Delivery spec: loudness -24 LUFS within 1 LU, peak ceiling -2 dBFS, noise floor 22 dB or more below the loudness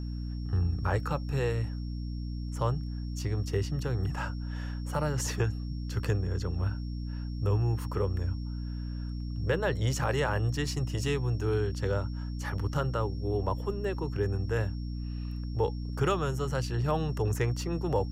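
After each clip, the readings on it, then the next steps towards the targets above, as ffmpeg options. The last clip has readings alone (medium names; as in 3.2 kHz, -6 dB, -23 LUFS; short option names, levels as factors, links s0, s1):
hum 60 Hz; highest harmonic 300 Hz; hum level -33 dBFS; steady tone 5.5 kHz; tone level -55 dBFS; loudness -32.0 LUFS; peak level -15.5 dBFS; loudness target -24.0 LUFS
-> -af "bandreject=f=60:t=h:w=4,bandreject=f=120:t=h:w=4,bandreject=f=180:t=h:w=4,bandreject=f=240:t=h:w=4,bandreject=f=300:t=h:w=4"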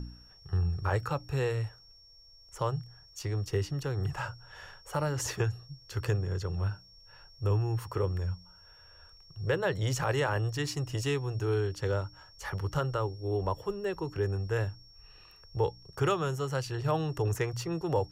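hum not found; steady tone 5.5 kHz; tone level -55 dBFS
-> -af "bandreject=f=5500:w=30"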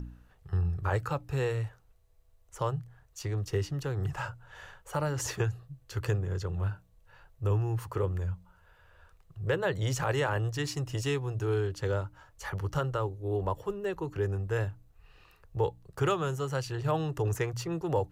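steady tone not found; loudness -32.5 LUFS; peak level -16.5 dBFS; loudness target -24.0 LUFS
-> -af "volume=2.66"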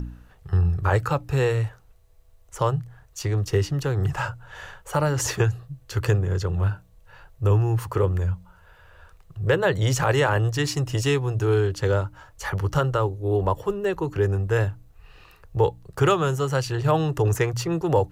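loudness -24.0 LUFS; peak level -8.0 dBFS; noise floor -54 dBFS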